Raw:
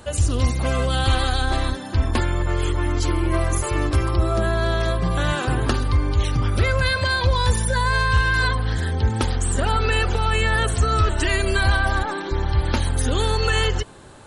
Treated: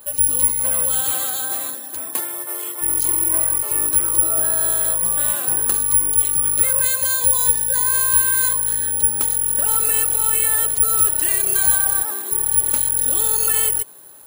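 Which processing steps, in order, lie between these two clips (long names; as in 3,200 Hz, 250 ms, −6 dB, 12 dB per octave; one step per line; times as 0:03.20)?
0:01.00–0:02.81: high-pass filter 110 Hz → 380 Hz 12 dB per octave
bad sample-rate conversion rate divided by 4×, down filtered, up zero stuff
bass and treble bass −11 dB, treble +4 dB
level −7.5 dB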